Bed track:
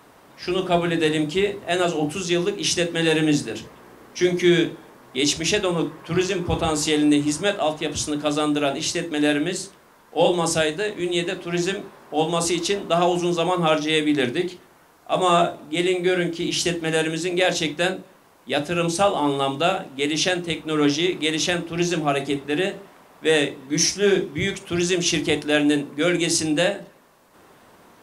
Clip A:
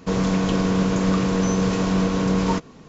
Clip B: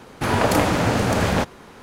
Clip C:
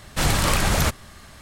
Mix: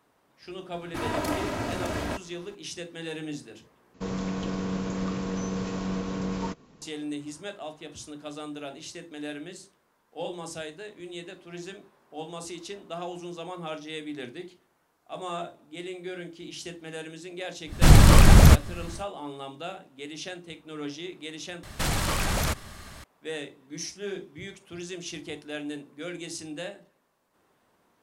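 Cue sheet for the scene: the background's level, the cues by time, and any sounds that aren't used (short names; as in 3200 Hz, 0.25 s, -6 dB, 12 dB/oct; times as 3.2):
bed track -16.5 dB
0.73 add B -12 dB + comb 3.1 ms, depth 53%
3.94 replace with A -10.5 dB
17.65 add C -1 dB, fades 0.10 s + low shelf 390 Hz +11 dB
21.63 replace with C -16.5 dB + maximiser +17 dB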